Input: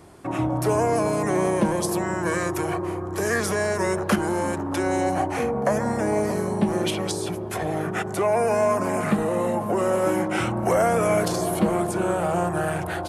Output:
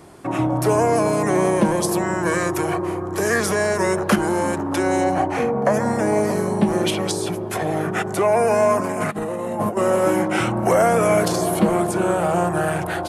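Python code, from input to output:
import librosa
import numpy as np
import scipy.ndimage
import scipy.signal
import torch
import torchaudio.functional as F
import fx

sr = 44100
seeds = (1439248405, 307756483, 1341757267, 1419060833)

y = fx.high_shelf(x, sr, hz=6700.0, db=-9.5, at=(5.04, 5.74))
y = fx.over_compress(y, sr, threshold_db=-27.0, ratio=-0.5, at=(8.77, 9.77))
y = fx.peak_eq(y, sr, hz=72.0, db=-13.0, octaves=0.39)
y = F.gain(torch.from_numpy(y), 4.0).numpy()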